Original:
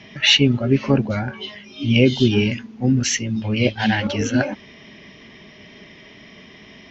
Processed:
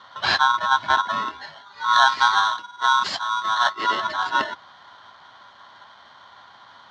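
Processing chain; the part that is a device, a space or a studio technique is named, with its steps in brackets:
ring modulator pedal into a guitar cabinet (ring modulator with a square carrier 1,200 Hz; loudspeaker in its box 96–4,300 Hz, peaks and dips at 100 Hz +6 dB, 220 Hz +3 dB, 470 Hz −7 dB, 1,100 Hz +7 dB, 2,500 Hz −7 dB)
0:01.93–0:03.70: high-shelf EQ 3,800 Hz +7 dB
level −4.5 dB

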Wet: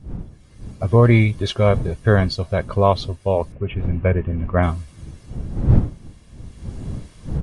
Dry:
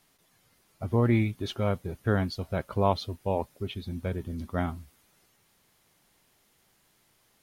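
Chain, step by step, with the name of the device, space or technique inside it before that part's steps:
0:03.52–0:04.63: elliptic low-pass filter 2,700 Hz, stop band 40 dB
comb filter 1.8 ms, depth 43%
smartphone video outdoors (wind on the microphone 120 Hz; automatic gain control gain up to 16 dB; level −1 dB; AAC 96 kbit/s 22,050 Hz)

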